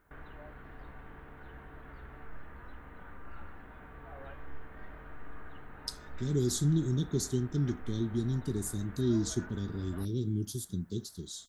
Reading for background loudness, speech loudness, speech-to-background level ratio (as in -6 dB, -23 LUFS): -50.5 LUFS, -33.0 LUFS, 17.5 dB